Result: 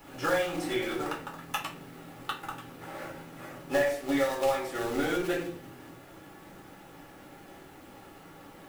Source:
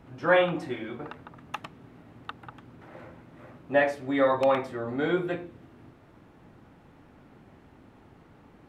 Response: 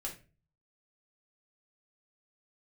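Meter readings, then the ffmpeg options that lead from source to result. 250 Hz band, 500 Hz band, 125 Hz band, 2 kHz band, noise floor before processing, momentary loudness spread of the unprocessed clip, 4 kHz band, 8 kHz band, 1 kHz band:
-1.5 dB, -3.5 dB, -4.0 dB, -3.0 dB, -56 dBFS, 21 LU, +2.5 dB, no reading, -3.0 dB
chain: -filter_complex "[0:a]aemphasis=mode=production:type=bsi,bandreject=f=73.2:t=h:w=4,bandreject=f=146.4:t=h:w=4,bandreject=f=219.6:t=h:w=4,bandreject=f=292.8:t=h:w=4,bandreject=f=366:t=h:w=4,bandreject=f=439.2:t=h:w=4,bandreject=f=512.4:t=h:w=4,bandreject=f=585.6:t=h:w=4,bandreject=f=658.8:t=h:w=4,acompressor=threshold=0.0224:ratio=8,acrossover=split=1500[s0][s1];[s0]acrusher=bits=2:mode=log:mix=0:aa=0.000001[s2];[s2][s1]amix=inputs=2:normalize=0[s3];[1:a]atrim=start_sample=2205[s4];[s3][s4]afir=irnorm=-1:irlink=0,volume=2.37"

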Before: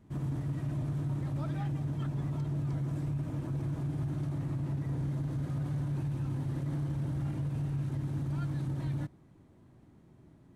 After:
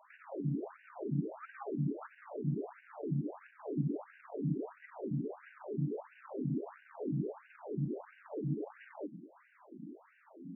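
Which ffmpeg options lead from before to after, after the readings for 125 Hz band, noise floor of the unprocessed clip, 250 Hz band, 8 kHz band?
-8.5 dB, -59 dBFS, -1.5 dB, no reading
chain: -filter_complex "[0:a]acrossover=split=240[s0][s1];[s1]acompressor=threshold=0.00141:ratio=2[s2];[s0][s2]amix=inputs=2:normalize=0,asoftclip=type=tanh:threshold=0.0168,afftfilt=real='re*between(b*sr/1024,220*pow(2100/220,0.5+0.5*sin(2*PI*1.5*pts/sr))/1.41,220*pow(2100/220,0.5+0.5*sin(2*PI*1.5*pts/sr))*1.41)':imag='im*between(b*sr/1024,220*pow(2100/220,0.5+0.5*sin(2*PI*1.5*pts/sr))/1.41,220*pow(2100/220,0.5+0.5*sin(2*PI*1.5*pts/sr))*1.41)':win_size=1024:overlap=0.75,volume=5.96"

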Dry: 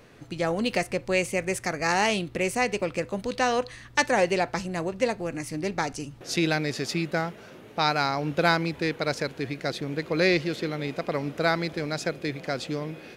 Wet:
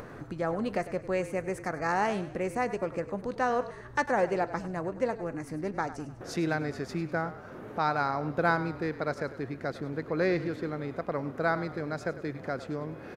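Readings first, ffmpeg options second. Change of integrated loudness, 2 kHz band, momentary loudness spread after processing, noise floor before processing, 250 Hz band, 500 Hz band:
-4.5 dB, -6.0 dB, 8 LU, -47 dBFS, -4.0 dB, -3.5 dB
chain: -filter_complex "[0:a]highshelf=f=2000:t=q:w=1.5:g=-10,acompressor=mode=upward:threshold=0.0398:ratio=2.5,asplit=6[s0][s1][s2][s3][s4][s5];[s1]adelay=100,afreqshift=-34,volume=0.2[s6];[s2]adelay=200,afreqshift=-68,volume=0.0955[s7];[s3]adelay=300,afreqshift=-102,volume=0.0457[s8];[s4]adelay=400,afreqshift=-136,volume=0.0221[s9];[s5]adelay=500,afreqshift=-170,volume=0.0106[s10];[s0][s6][s7][s8][s9][s10]amix=inputs=6:normalize=0,volume=0.596"

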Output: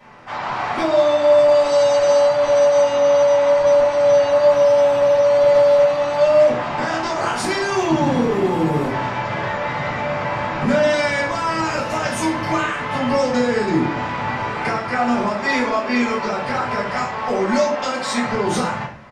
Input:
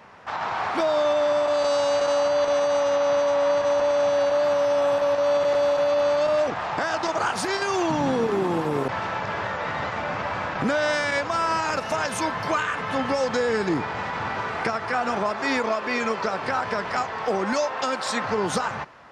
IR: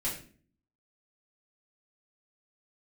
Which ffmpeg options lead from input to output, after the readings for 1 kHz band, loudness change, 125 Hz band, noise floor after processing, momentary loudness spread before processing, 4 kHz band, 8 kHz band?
+4.0 dB, +6.0 dB, +8.0 dB, -26 dBFS, 7 LU, +3.5 dB, +4.0 dB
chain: -filter_complex "[1:a]atrim=start_sample=2205[s0];[0:a][s0]afir=irnorm=-1:irlink=0,aresample=32000,aresample=44100"

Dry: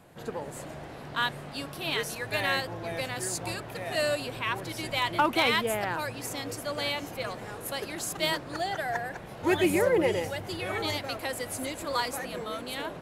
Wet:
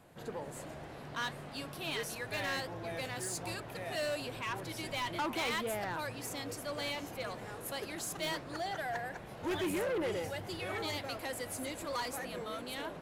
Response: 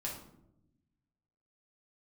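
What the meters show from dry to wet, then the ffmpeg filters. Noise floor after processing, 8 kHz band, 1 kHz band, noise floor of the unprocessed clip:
-47 dBFS, -6.0 dB, -8.0 dB, -43 dBFS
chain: -af "flanger=delay=2.5:depth=5.1:regen=-87:speed=1.4:shape=triangular,asoftclip=type=tanh:threshold=0.0299"

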